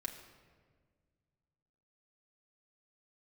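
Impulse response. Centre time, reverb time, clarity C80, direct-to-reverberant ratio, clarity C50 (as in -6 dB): 25 ms, 1.7 s, 9.5 dB, -0.5 dB, 9.0 dB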